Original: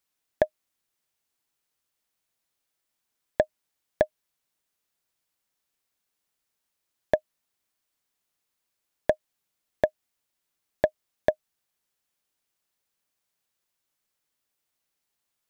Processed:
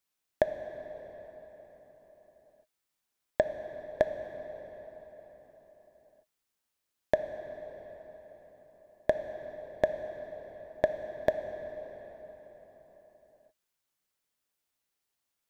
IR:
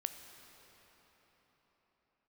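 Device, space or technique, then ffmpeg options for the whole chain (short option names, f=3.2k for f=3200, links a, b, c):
cathedral: -filter_complex "[1:a]atrim=start_sample=2205[a];[0:a][a]afir=irnorm=-1:irlink=0,volume=-1.5dB"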